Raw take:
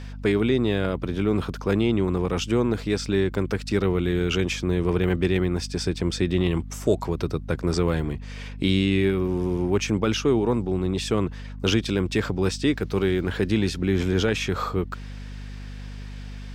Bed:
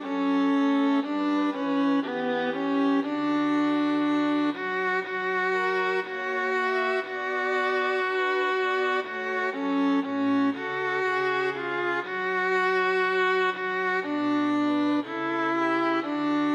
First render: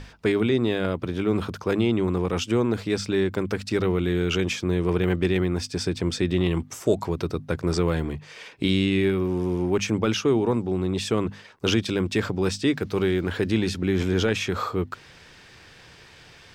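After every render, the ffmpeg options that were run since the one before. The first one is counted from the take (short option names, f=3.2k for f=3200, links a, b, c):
-af "bandreject=f=50:t=h:w=6,bandreject=f=100:t=h:w=6,bandreject=f=150:t=h:w=6,bandreject=f=200:t=h:w=6,bandreject=f=250:t=h:w=6"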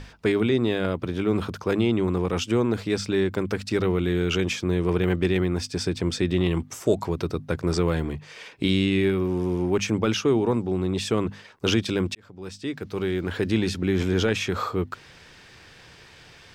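-filter_complex "[0:a]asplit=2[a][b];[a]atrim=end=12.15,asetpts=PTS-STARTPTS,afade=t=out:st=12.146:d=0.004:c=hsin[c];[b]atrim=start=12.15,asetpts=PTS-STARTPTS,afade=t=in:d=1.38[d];[c][d]concat=n=2:v=0:a=1"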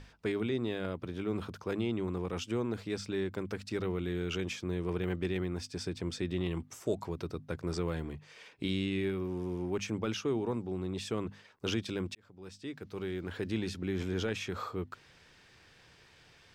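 -af "volume=-11dB"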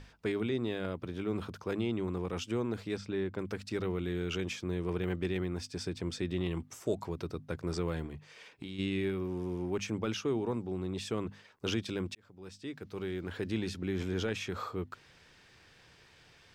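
-filter_complex "[0:a]asettb=1/sr,asplit=3[a][b][c];[a]atrim=end=2.974[d];[b]atrim=start=2.97:end=3.39,asetpts=PTS-STARTPTS,afade=t=in:d=0.004:c=qsin,afade=t=out:st=0.416:d=0.004:c=qsin,lowpass=f=2.7k:p=1[e];[c]atrim=start=3.386[f];[d][e]acrossfade=d=0.004:c1=hsin:c2=qsin[g];[g][f]acrossfade=d=0.004:c1=qsin:c2=hsin,asplit=3[h][i][j];[h]afade=t=out:st=8.06:d=0.02[k];[i]acompressor=threshold=-38dB:ratio=6:attack=3.2:release=140:knee=1:detection=peak,afade=t=in:st=8.06:d=0.02,afade=t=out:st=8.78:d=0.02[l];[j]afade=t=in:st=8.78:d=0.02[m];[k][l][m]amix=inputs=3:normalize=0"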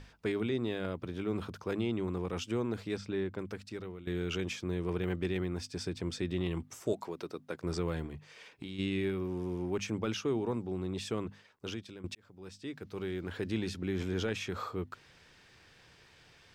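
-filter_complex "[0:a]asettb=1/sr,asplit=3[a][b][c];[a]atrim=end=6.934[d];[b]atrim=start=6.93:end=7.63,asetpts=PTS-STARTPTS,afade=t=in:d=0.004:c=qsin,afade=t=out:st=0.696:d=0.004:c=qsin,highpass=260[e];[c]atrim=start=7.626[f];[d][e]acrossfade=d=0.004:c1=hsin:c2=qsin[g];[g][f]acrossfade=d=0.004:c1=qsin:c2=hsin,asplit=3[h][i][j];[h]atrim=end=4.07,asetpts=PTS-STARTPTS,afade=t=out:st=3.18:d=0.89:silence=0.177828[k];[i]atrim=start=4.07:end=12.04,asetpts=PTS-STARTPTS,afade=t=in:d=0.004:c=hsin:silence=0.177828,afade=t=out:st=7.02:d=0.95:silence=0.16788[l];[j]atrim=start=12.04,asetpts=PTS-STARTPTS,afade=t=in:d=0.004:c=hsin:silence=0.16788[m];[k][l][m]concat=n=3:v=0:a=1"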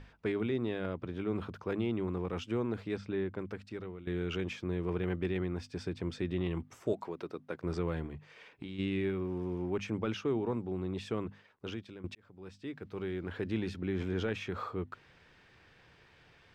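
-af "bass=f=250:g=0,treble=f=4k:g=-12"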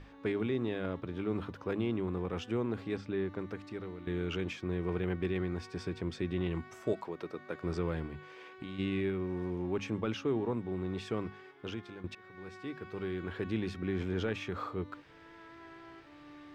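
-filter_complex "[1:a]volume=-27.5dB[a];[0:a][a]amix=inputs=2:normalize=0"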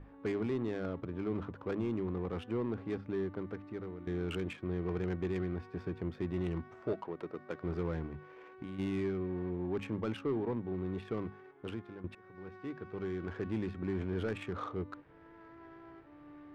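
-af "adynamicsmooth=sensitivity=7.5:basefreq=1.3k,asoftclip=type=tanh:threshold=-26dB"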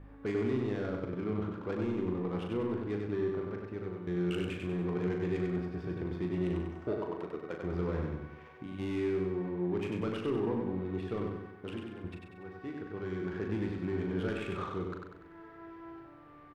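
-filter_complex "[0:a]asplit=2[a][b];[b]adelay=39,volume=-6.5dB[c];[a][c]amix=inputs=2:normalize=0,aecho=1:1:96|192|288|384|480|576:0.631|0.303|0.145|0.0698|0.0335|0.0161"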